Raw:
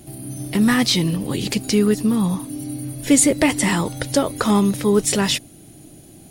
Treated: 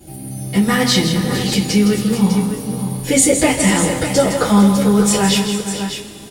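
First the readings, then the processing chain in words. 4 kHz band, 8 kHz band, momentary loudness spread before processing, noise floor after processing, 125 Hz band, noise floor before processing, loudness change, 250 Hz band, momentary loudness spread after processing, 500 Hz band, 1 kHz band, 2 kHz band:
+4.0 dB, +4.0 dB, 13 LU, −33 dBFS, +5.5 dB, −45 dBFS, +3.5 dB, +4.0 dB, 10 LU, +4.0 dB, +5.0 dB, +3.5 dB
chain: multi-tap delay 162/455/602 ms −9/−14/−9.5 dB
coupled-rooms reverb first 0.2 s, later 3 s, from −22 dB, DRR −10 dB
level −7 dB

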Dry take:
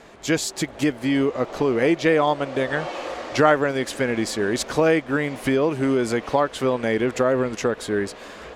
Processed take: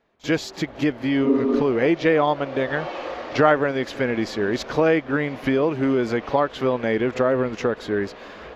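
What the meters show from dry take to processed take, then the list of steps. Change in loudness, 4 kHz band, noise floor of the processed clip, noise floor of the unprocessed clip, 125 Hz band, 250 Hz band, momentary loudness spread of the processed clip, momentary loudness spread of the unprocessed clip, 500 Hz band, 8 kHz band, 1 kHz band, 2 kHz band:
0.0 dB, −2.5 dB, −42 dBFS, −41 dBFS, 0.0 dB, +0.5 dB, 8 LU, 7 LU, 0.0 dB, below −10 dB, 0.0 dB, −0.5 dB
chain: noise gate with hold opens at −34 dBFS
healed spectral selection 0:01.27–0:01.59, 200–1,300 Hz before
moving average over 5 samples
backwards echo 41 ms −18.5 dB

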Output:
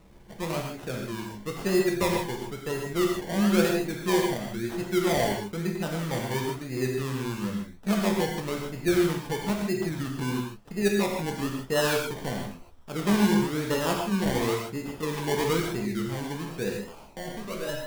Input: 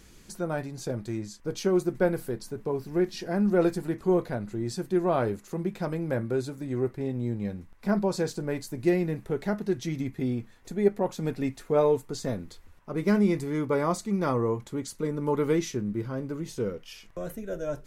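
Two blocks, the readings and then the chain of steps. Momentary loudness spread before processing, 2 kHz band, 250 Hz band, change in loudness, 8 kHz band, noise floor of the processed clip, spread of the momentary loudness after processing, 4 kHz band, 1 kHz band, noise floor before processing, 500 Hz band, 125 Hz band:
10 LU, +7.0 dB, +1.0 dB, +1.0 dB, +6.0 dB, −47 dBFS, 11 LU, +9.5 dB, +3.0 dB, −53 dBFS, −1.0 dB, +0.5 dB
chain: sample-and-hold swept by an LFO 27×, swing 60% 1 Hz
reverb whose tail is shaped and stops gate 180 ms flat, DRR 0 dB
level −3 dB

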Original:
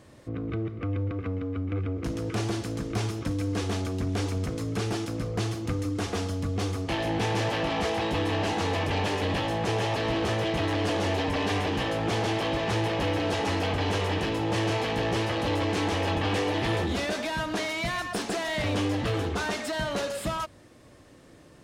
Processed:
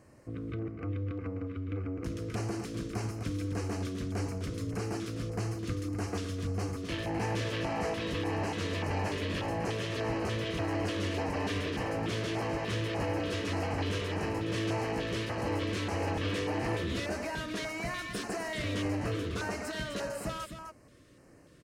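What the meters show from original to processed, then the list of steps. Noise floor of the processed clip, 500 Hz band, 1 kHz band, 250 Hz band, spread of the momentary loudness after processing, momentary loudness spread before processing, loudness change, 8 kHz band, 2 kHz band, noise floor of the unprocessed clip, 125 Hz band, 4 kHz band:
−57 dBFS, −6.0 dB, −7.5 dB, −5.0 dB, 4 LU, 4 LU, −5.5 dB, −5.5 dB, −6.0 dB, −52 dBFS, −5.0 dB, −7.5 dB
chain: single-tap delay 255 ms −8 dB
auto-filter notch square 1.7 Hz 810–3,500 Hz
level −5.5 dB

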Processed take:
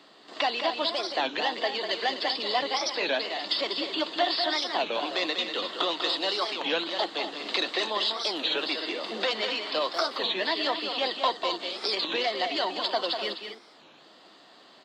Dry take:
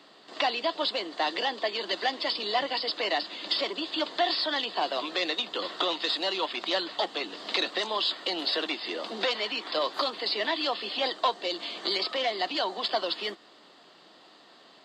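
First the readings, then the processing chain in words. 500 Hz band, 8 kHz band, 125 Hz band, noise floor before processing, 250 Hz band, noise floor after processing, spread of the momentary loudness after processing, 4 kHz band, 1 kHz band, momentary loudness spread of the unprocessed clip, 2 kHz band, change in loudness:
+1.0 dB, +5.0 dB, can't be measured, −55 dBFS, +1.0 dB, −54 dBFS, 4 LU, +1.0 dB, +1.0 dB, 4 LU, +1.5 dB, +1.0 dB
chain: loudspeakers that aren't time-aligned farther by 67 metres −7 dB, 86 metres −11 dB
wow of a warped record 33 1/3 rpm, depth 250 cents

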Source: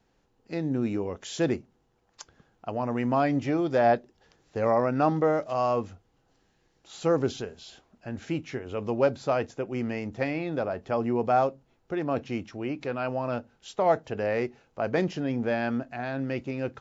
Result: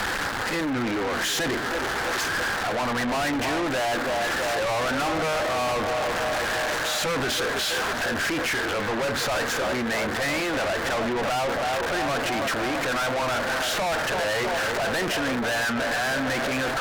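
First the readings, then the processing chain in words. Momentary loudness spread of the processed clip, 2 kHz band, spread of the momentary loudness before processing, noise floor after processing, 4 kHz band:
1 LU, +14.0 dB, 11 LU, −28 dBFS, +18.0 dB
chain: converter with a step at zero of −31 dBFS
graphic EQ with 15 bands 160 Hz −6 dB, 400 Hz −4 dB, 1,600 Hz +9 dB
on a send: feedback echo with a band-pass in the loop 325 ms, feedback 72%, band-pass 590 Hz, level −11 dB
on the sum: mid-hump overdrive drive 22 dB, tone 2,200 Hz, clips at −8 dBFS
in parallel at −1.5 dB: brickwall limiter −19 dBFS, peak gain reduction 10 dB
on the sum: tube saturation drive 26 dB, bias 0.7
level +2 dB

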